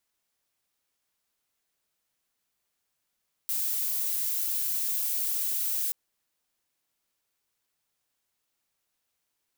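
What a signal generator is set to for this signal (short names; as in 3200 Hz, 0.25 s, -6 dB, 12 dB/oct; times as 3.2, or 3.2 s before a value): noise violet, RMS -29 dBFS 2.43 s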